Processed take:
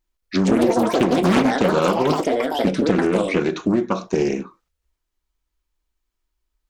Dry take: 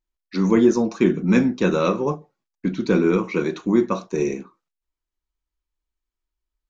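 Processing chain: compressor 6:1, threshold -23 dBFS, peak gain reduction 12.5 dB; echoes that change speed 0.224 s, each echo +6 st, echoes 3; Doppler distortion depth 0.37 ms; gain +7.5 dB

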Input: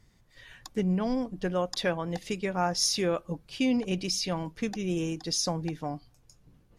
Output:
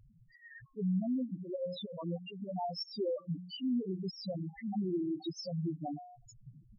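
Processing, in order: low shelf 100 Hz -10 dB; de-hum 89.89 Hz, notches 28; in parallel at +1 dB: vocal rider within 4 dB 0.5 s; on the sum: auto swell 0.246 s; compressor, threshold -35 dBFS, peak gain reduction 15.5 dB; loudest bins only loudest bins 2; gain +6 dB

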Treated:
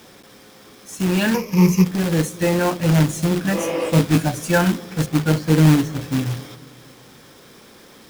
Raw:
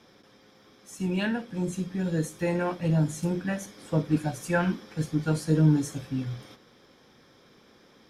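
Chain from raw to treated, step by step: 5.06–6.01 air absorption 180 m; in parallel at -8 dB: soft clip -23 dBFS, distortion -10 dB; on the sum: companded quantiser 4-bit; 1.34–1.85 ripple EQ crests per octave 0.81, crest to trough 17 dB; on a send: analogue delay 0.24 s, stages 1024, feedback 54%, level -21 dB; 3.56–3.87 on the sum: spectral repair 300–3300 Hz after; 3.56–4.23 doubler 18 ms -3.5 dB; gain +6 dB

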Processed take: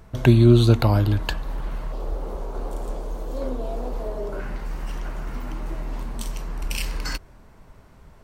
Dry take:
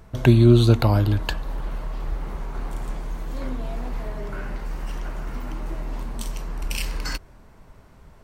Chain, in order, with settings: 1.92–4.4 graphic EQ 125/500/2000 Hz -8/+10/-9 dB

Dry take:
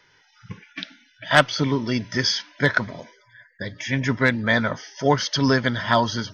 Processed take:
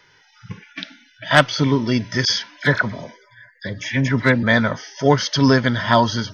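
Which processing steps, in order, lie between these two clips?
harmonic-percussive split harmonic +4 dB; 2.25–4.43 dispersion lows, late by 48 ms, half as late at 1900 Hz; gain +1.5 dB

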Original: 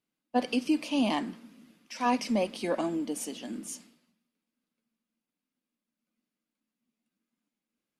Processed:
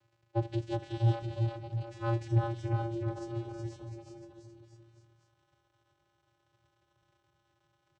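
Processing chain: notch comb 280 Hz; formant-preserving pitch shift -6 st; crackle 540/s -46 dBFS; vocoder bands 8, square 115 Hz; bouncing-ball echo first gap 0.37 s, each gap 0.9×, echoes 5

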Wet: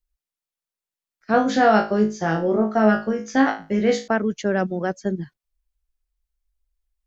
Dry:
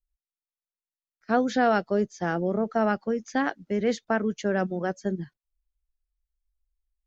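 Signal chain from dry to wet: 1.32–4.08 flutter echo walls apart 3.2 m, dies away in 0.31 s; gain +4 dB

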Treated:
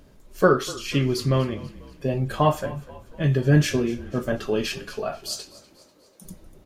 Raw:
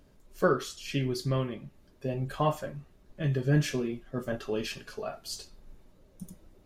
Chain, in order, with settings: 5.29–6.24 HPF 140 Hz -> 450 Hz 12 dB/oct; frequency-shifting echo 0.245 s, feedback 52%, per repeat -33 Hz, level -19 dB; gain +7.5 dB

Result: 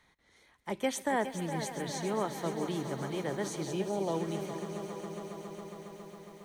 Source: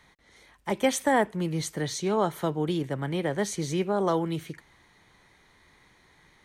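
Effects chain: notches 50/100/150 Hz; swelling echo 0.137 s, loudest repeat 5, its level -16 dB; spectral gain 3.65–4.14, 1000–2300 Hz -12 dB; lo-fi delay 0.416 s, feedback 55%, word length 8-bit, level -10 dB; gain -7.5 dB

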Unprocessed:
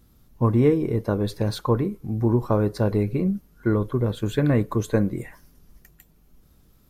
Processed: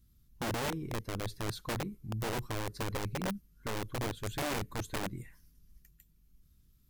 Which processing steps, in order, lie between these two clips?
passive tone stack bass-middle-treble 6-0-2; wrapped overs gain 34.5 dB; gain +5 dB

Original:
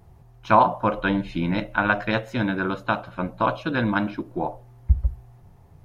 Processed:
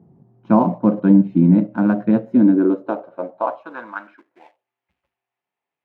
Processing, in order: EQ curve 100 Hz 0 dB, 270 Hz +9 dB, 5500 Hz -26 dB; in parallel at -11 dB: backlash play -29 dBFS; on the sum: high-pass sweep 180 Hz -> 2600 Hz, 2.18–4.59; gain -2 dB

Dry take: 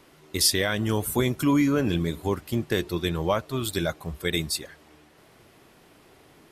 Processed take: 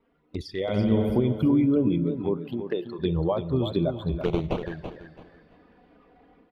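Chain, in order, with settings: formant sharpening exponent 1.5; compressor 3:1, threshold -31 dBFS, peak gain reduction 11 dB; 0.61–1.16 flutter echo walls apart 11.6 m, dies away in 1.2 s; plate-style reverb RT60 4.8 s, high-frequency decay 0.75×, DRR 15 dB; spectral noise reduction 9 dB; 1.88–2.98 HPF 130 Hz -> 500 Hz 12 dB/oct; 4.21–4.63 sample-rate reducer 1900 Hz, jitter 20%; air absorption 330 m; envelope flanger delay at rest 4.6 ms, full sweep at -33 dBFS; AGC gain up to 10 dB; feedback echo 0.333 s, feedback 26%, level -9 dB

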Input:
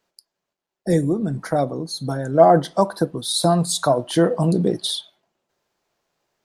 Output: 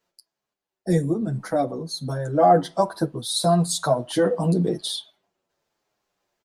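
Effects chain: endless flanger 8.4 ms -1.1 Hz

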